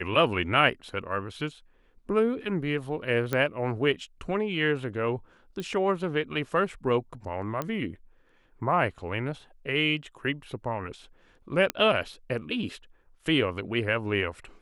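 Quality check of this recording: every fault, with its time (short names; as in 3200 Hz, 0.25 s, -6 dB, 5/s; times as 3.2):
3.33 pop -14 dBFS
5.6 pop -22 dBFS
7.62 pop -17 dBFS
11.7 pop -11 dBFS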